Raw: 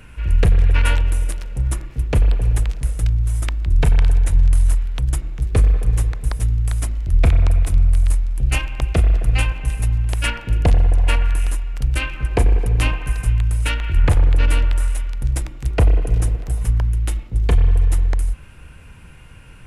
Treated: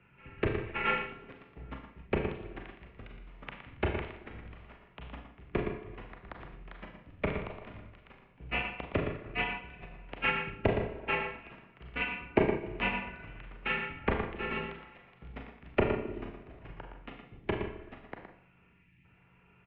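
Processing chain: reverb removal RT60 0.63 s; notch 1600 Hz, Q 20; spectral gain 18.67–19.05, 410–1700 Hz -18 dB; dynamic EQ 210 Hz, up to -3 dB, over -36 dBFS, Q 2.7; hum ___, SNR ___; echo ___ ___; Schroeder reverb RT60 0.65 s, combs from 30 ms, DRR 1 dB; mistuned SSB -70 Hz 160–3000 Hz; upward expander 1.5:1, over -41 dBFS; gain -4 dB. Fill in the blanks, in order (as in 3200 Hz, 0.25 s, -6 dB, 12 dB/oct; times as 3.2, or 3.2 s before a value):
50 Hz, 28 dB, 0.116 s, -6.5 dB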